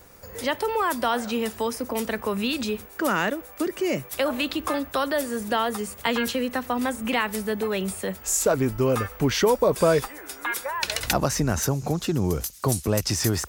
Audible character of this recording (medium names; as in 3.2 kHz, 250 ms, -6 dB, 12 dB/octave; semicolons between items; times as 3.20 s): noise floor -45 dBFS; spectral tilt -4.5 dB/octave